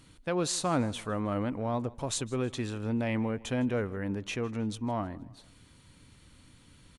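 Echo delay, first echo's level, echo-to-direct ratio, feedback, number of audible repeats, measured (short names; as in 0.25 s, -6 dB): 0.158 s, -22.0 dB, -21.0 dB, 43%, 2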